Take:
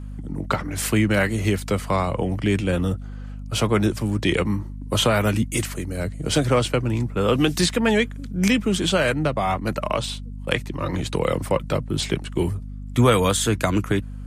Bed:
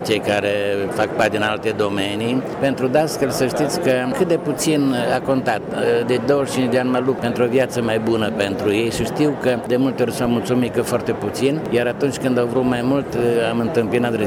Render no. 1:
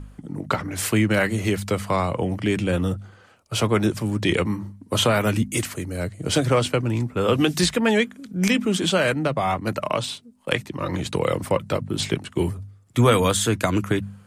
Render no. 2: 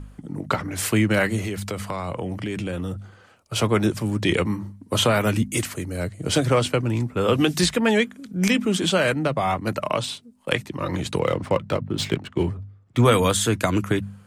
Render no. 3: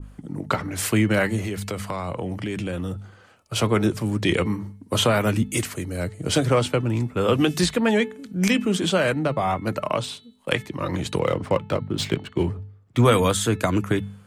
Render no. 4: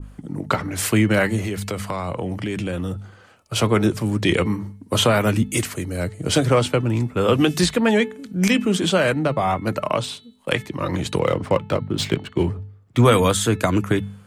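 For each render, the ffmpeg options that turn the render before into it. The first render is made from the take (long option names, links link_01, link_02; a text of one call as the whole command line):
ffmpeg -i in.wav -af "bandreject=frequency=50:width_type=h:width=4,bandreject=frequency=100:width_type=h:width=4,bandreject=frequency=150:width_type=h:width=4,bandreject=frequency=200:width_type=h:width=4,bandreject=frequency=250:width_type=h:width=4" out.wav
ffmpeg -i in.wav -filter_complex "[0:a]asettb=1/sr,asplit=3[link_01][link_02][link_03];[link_01]atrim=end=1.404[link_04];[link_02]atrim=start=1.4:end=3.56,asetpts=PTS-STARTPTS,afade=type=in:duration=0.004:curve=qsin,afade=type=out:start_time=2.156:duration=0.004:curve=qsin,acompressor=threshold=-24dB:ratio=6:attack=3.2:release=140:knee=1:detection=peak[link_05];[link_03]atrim=start=3.556[link_06];[link_04][link_05]acrossfade=duration=0.004:curve1=hsin:curve2=qsin[link_07];[link_07][link_06]acrossfade=duration=0.004:curve1=qsin:curve2=hsin,asettb=1/sr,asplit=3[link_08][link_09][link_10];[link_08]atrim=end=11.194[link_11];[link_09]atrim=start=11.19:end=13.05,asetpts=PTS-STARTPTS,afade=type=in:duration=0.004:curve=qsin,afade=type=out:start_time=1.856:duration=0.004:curve=qsin,adynamicsmooth=sensitivity=6.5:basefreq=3200[link_12];[link_10]atrim=start=13.046[link_13];[link_11][link_12]acrossfade=duration=0.004:curve1=hsin:curve2=qsin[link_14];[link_14][link_13]acrossfade=duration=0.004:curve1=qsin:curve2=hsin" out.wav
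ffmpeg -i in.wav -af "bandreject=frequency=434.5:width_type=h:width=4,bandreject=frequency=869:width_type=h:width=4,bandreject=frequency=1303.5:width_type=h:width=4,bandreject=frequency=1738:width_type=h:width=4,bandreject=frequency=2172.5:width_type=h:width=4,bandreject=frequency=2607:width_type=h:width=4,bandreject=frequency=3041.5:width_type=h:width=4,bandreject=frequency=3476:width_type=h:width=4,bandreject=frequency=3910.5:width_type=h:width=4,bandreject=frequency=4345:width_type=h:width=4,adynamicequalizer=threshold=0.0224:dfrequency=1600:dqfactor=0.7:tfrequency=1600:tqfactor=0.7:attack=5:release=100:ratio=0.375:range=2:mode=cutabove:tftype=highshelf" out.wav
ffmpeg -i in.wav -af "volume=2.5dB,alimiter=limit=-2dB:level=0:latency=1" out.wav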